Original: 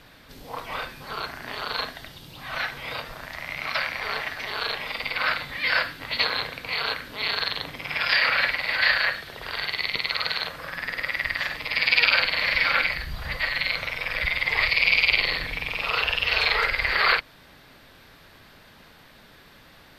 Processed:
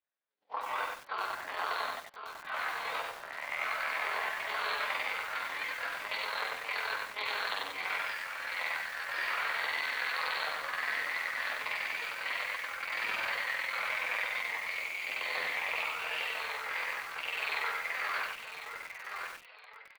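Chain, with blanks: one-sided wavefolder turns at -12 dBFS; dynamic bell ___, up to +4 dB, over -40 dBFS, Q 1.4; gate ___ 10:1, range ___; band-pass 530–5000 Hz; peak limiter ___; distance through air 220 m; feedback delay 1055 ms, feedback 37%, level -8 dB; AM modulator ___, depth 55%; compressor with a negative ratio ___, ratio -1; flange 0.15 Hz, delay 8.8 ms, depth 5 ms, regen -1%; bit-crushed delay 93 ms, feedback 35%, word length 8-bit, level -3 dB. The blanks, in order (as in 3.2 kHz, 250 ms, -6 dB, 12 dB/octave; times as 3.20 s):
1 kHz, -37 dBFS, -38 dB, -8.5 dBFS, 42 Hz, -34 dBFS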